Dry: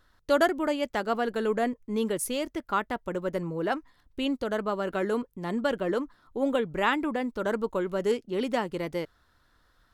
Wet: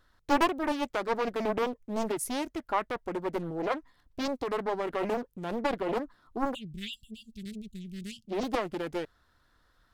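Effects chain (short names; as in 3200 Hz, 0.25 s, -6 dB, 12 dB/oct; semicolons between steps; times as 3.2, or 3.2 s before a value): spectral delete 6.54–8.27, 230–2700 Hz; Doppler distortion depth 0.97 ms; gain -2 dB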